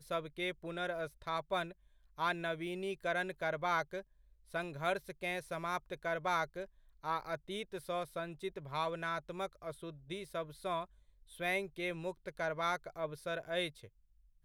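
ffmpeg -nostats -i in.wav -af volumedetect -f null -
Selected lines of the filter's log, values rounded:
mean_volume: -39.7 dB
max_volume: -21.3 dB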